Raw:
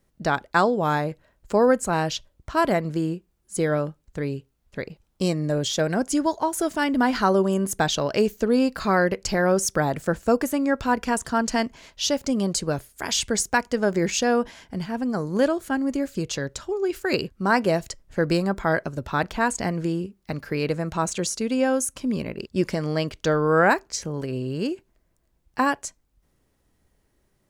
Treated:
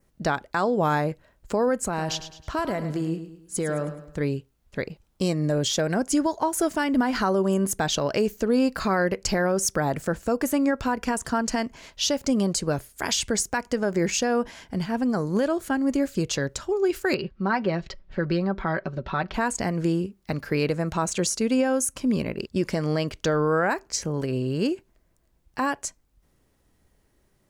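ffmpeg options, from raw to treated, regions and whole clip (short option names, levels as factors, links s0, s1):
-filter_complex "[0:a]asettb=1/sr,asplit=3[s0][s1][s2];[s0]atrim=end=1.864[s3];[s1]atrim=start=1.86:end=4.21,asetpts=PTS-STARTPTS,afade=t=in:d=0.004:c=qsin,afade=t=out:st=2.346:d=0.004:c=qsin,acompressor=threshold=0.0562:ratio=5:attack=3.2:release=140:knee=1:detection=peak,aecho=1:1:106|212|318|424:0.282|0.116|0.0474|0.0194,atrim=end_sample=103635[s4];[s2]atrim=start=4.206[s5];[s3][s4]acrossfade=d=0.004:c1=hsin:c2=qsin[s6];[s6][s5]acrossfade=d=0.004:c1=qsin:c2=hsin,asettb=1/sr,asplit=3[s7][s8][s9];[s7]atrim=end=17.144[s10];[s8]atrim=start=17.14:end=19.34,asetpts=PTS-STARTPTS,afade=t=in:d=0.004:c=qsin,afade=t=out:st=2.196:d=0.004:c=qsin,lowpass=f=4300:w=0.5412,lowpass=f=4300:w=1.3066,aecho=1:1:5.3:0.57,atrim=end_sample=97020,acompressor=threshold=0.02:ratio=1.5:attack=3.2:release=140:knee=1:detection=peak[s11];[s9]atrim=start=19.336[s12];[s10][s11]acrossfade=d=0.004:c1=hsin:c2=qsin[s13];[s13][s12]acrossfade=d=0.004:c1=qsin:c2=hsin,adynamicequalizer=threshold=0.00355:dfrequency=3600:dqfactor=3:tfrequency=3600:tqfactor=3:attack=5:release=100:ratio=0.375:range=2:mode=cutabove:tftype=bell,alimiter=limit=0.168:level=0:latency=1:release=155,volume=1.26"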